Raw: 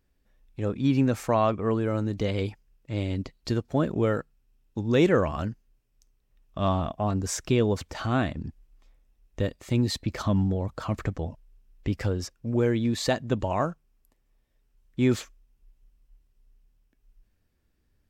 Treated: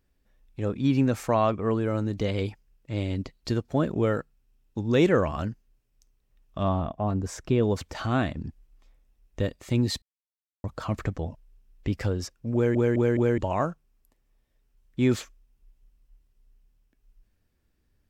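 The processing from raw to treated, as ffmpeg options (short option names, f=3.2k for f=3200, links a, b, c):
-filter_complex "[0:a]asettb=1/sr,asplit=3[a][b][c];[a]atrim=end=6.634[d];[b]atrim=start=6.63:end=7.63,asetpts=PTS-STARTPTS,afade=t=in:d=0.004:c=qsin,afade=t=out:st=0.996:d=0.004:c=qsin,highshelf=f=2.1k:g=-10[e];[c]atrim=start=7.626[f];[d][e]acrossfade=d=0.004:c1=hsin:c2=qsin[g];[g][f]acrossfade=d=0.004:c1=qsin:c2=hsin,asplit=7[h][i][j][k][l][m][n];[h]atrim=end=10.02,asetpts=PTS-STARTPTS,afade=t=out:st=10.016:d=0.004:c=hsin[o];[i]atrim=start=10.02:end=10.64,asetpts=PTS-STARTPTS,volume=0[p];[j]atrim=start=10.64:end=12.752,asetpts=PTS-STARTPTS,afade=t=in:d=0.004:c=hsin[q];[k]atrim=start=12.538:end=12.752[r];[l]atrim=start=12.538:end=12.752[s];[m]atrim=start=12.538:end=12.752[t];[n]atrim=start=13.378[u];[o][p][q]concat=n=3:v=0:a=1[v];[v][r]acrossfade=d=0.004:c1=hsin:c2=hsin[w];[w][s]acrossfade=d=0.004:c1=hsin:c2=hsin[x];[x][t]acrossfade=d=0.004:c1=hsin:c2=hsin[y];[y][u]acrossfade=d=0.004:c1=hsin:c2=hsin"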